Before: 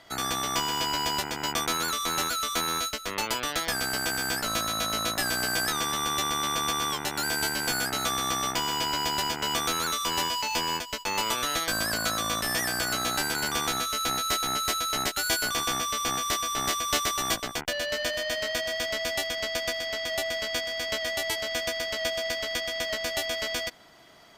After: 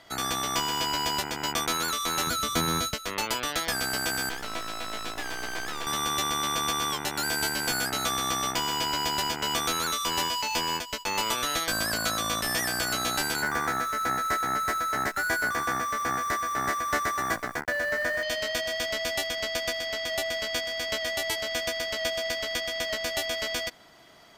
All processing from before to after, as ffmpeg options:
-filter_complex "[0:a]asettb=1/sr,asplit=3[s0][s1][s2];[s0]atrim=end=2.274[s3];[s1]atrim=start=2.27:end=2.94,asetpts=PTS-STARTPTS,afade=t=in:d=0.004:c=qsin,afade=t=out:st=0.666:d=0.004:c=qsin,equalizer=f=120:t=o:w=2.6:g=14,bandreject=f=2700:w=25[s4];[s2]atrim=start=2.936[s5];[s3][s4]acrossfade=d=0.004:c1=hsin:c2=qsin[s6];[s6][s5]acrossfade=d=0.004:c1=qsin:c2=hsin,asettb=1/sr,asplit=3[s7][s8][s9];[s7]atrim=end=4.294[s10];[s8]atrim=start=4.29:end=5.87,asetpts=PTS-STARTPTS,afade=t=in:d=0.004:c=qsin,afade=t=out:st=1.576:d=0.004:c=qsin,acrossover=split=4000[s11][s12];[s12]acompressor=threshold=0.00794:ratio=4:attack=1:release=60[s13];[s11][s13]amix=inputs=2:normalize=0,highpass=280,aeval=exprs='max(val(0),0)':c=same[s14];[s9]atrim=start=5.866[s15];[s10][s14]acrossfade=d=0.004:c1=hsin:c2=qsin[s16];[s16][s15]acrossfade=d=0.004:c1=qsin:c2=hsin,asettb=1/sr,asplit=3[s17][s18][s19];[s17]atrim=end=13.424[s20];[s18]atrim=start=13.42:end=18.23,asetpts=PTS-STARTPTS,afade=t=in:d=0.004:c=qsin,afade=t=out:st=4.806:d=0.004:c=qsin,highpass=50,acrusher=bits=7:dc=4:mix=0:aa=0.000001,highshelf=f=2300:t=q:w=3:g=-8[s21];[s19]atrim=start=18.226[s22];[s20][s21]acrossfade=d=0.004:c1=hsin:c2=qsin[s23];[s23][s22]acrossfade=d=0.004:c1=qsin:c2=hsin"

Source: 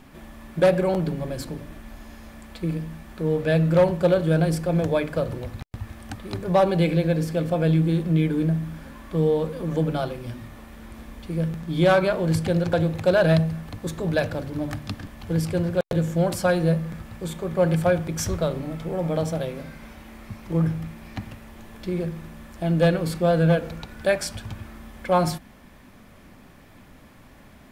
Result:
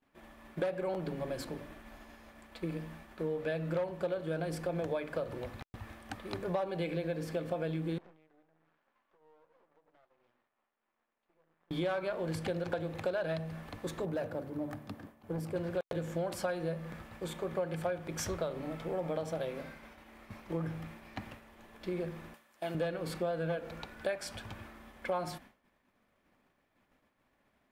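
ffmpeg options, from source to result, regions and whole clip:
-filter_complex "[0:a]asettb=1/sr,asplit=3[s0][s1][s2];[s0]atrim=end=7.984[s3];[s1]atrim=start=7.98:end=11.71,asetpts=PTS-STARTPTS,afade=t=in:d=0.004:c=qsin,afade=t=out:st=3.726:d=0.004:c=qsin,bandpass=f=1000:t=q:w=0.81,acompressor=threshold=0.00891:ratio=10:attack=3.2:release=140:knee=1:detection=peak,aeval=exprs='max(val(0),0)':c=same[s4];[s2]atrim=start=11.706[s5];[s3][s4]acrossfade=d=0.004:c1=hsin:c2=qsin[s6];[s6][s5]acrossfade=d=0.004:c1=qsin:c2=hsin,asettb=1/sr,asplit=3[s7][s8][s9];[s7]atrim=end=14.054[s10];[s8]atrim=start=14.05:end=15.56,asetpts=PTS-STARTPTS,afade=t=in:d=0.004:c=qsin,afade=t=out:st=1.506:d=0.004:c=qsin,highpass=100,asoftclip=type=hard:threshold=0.1,equalizer=f=3600:w=0.35:g=-11.5[s11];[s9]atrim=start=15.556[s12];[s10][s11]acrossfade=d=0.004:c1=hsin:c2=qsin[s13];[s13][s12]acrossfade=d=0.004:c1=qsin:c2=hsin,asettb=1/sr,asplit=3[s14][s15][s16];[s14]atrim=end=22.344[s17];[s15]atrim=start=22.34:end=22.75,asetpts=PTS-STARTPTS,afade=t=in:d=0.004:c=qsin,afade=t=out:st=0.406:d=0.004:c=qsin,highpass=f=570:p=1,highshelf=f=5000:g=7,acompressor=mode=upward:threshold=0.00708:ratio=2.5:attack=3.2:release=140:knee=2.83:detection=peak[s18];[s16]atrim=start=22.746[s19];[s17][s18]acrossfade=d=0.004:c1=hsin:c2=qsin[s20];[s20][s19]acrossfade=d=0.004:c1=qsin:c2=hsin,agate=range=0.0224:threshold=0.0141:ratio=3:detection=peak,bass=f=250:g=-10,treble=f=4000:g=-6,acompressor=threshold=0.0398:ratio=6,volume=0.668"

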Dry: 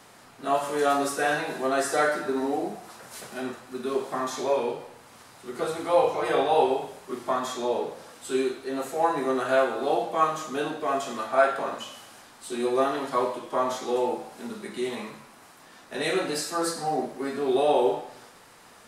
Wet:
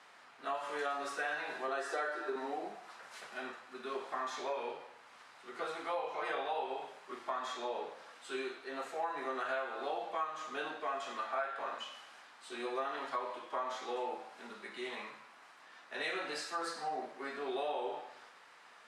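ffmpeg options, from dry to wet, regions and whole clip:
-filter_complex "[0:a]asettb=1/sr,asplit=3[s0][s1][s2];[s0]atrim=end=1.684[s3];[s1]atrim=start=1.68:end=2.36,asetpts=PTS-STARTPTS,afade=t=in:d=0.004:c=qsin,afade=t=out:st=0.676:d=0.004:c=qsin,lowshelf=f=240:t=q:w=3:g=-12.5,bandreject=f=2100:w=13[s4];[s2]atrim=start=2.356[s5];[s3][s4]acrossfade=d=0.004:c1=hsin:c2=qsin[s6];[s6][s5]acrossfade=d=0.004:c1=qsin:c2=hsin,lowpass=1800,aderivative,acompressor=threshold=0.00562:ratio=6,volume=3.76"

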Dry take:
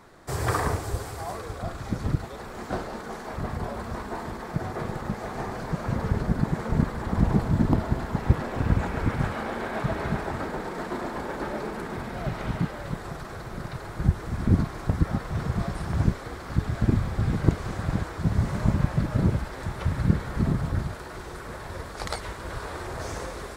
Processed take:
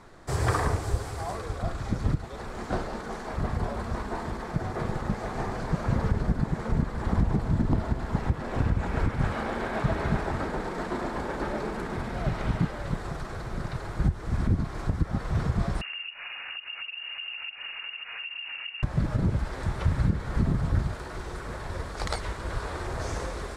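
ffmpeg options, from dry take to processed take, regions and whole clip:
-filter_complex "[0:a]asettb=1/sr,asplit=3[s0][s1][s2];[s0]atrim=end=15.814[s3];[s1]atrim=start=15.81:end=18.83,asetpts=PTS-STARTPTS,afade=t=in:d=0.004:c=qsin,afade=t=out:st=3.016:d=0.004:c=qsin,acompressor=threshold=0.0224:ratio=16:attack=3.2:release=140:knee=1:detection=peak,lowpass=f=2500:t=q:w=0.5098,lowpass=f=2500:t=q:w=0.6013,lowpass=f=2500:t=q:w=0.9,lowpass=f=2500:t=q:w=2.563,afreqshift=-2900[s4];[s2]atrim=start=18.826[s5];[s3][s4]acrossfade=d=0.004:c1=hsin:c2=qsin[s6];[s6][s5]acrossfade=d=0.004:c1=qsin:c2=hsin,lowpass=10000,lowshelf=f=62:g=8.5,alimiter=limit=0.2:level=0:latency=1:release=255"

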